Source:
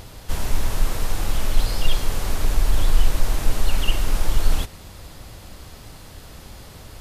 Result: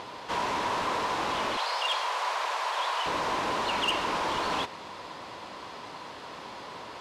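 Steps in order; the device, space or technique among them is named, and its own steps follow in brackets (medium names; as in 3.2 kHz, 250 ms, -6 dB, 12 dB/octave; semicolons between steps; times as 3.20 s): intercom (band-pass 320–3800 Hz; peaking EQ 1 kHz +11 dB 0.29 oct; saturation -24 dBFS, distortion -19 dB); 1.57–3.06 s: high-pass 580 Hz 24 dB/octave; trim +4 dB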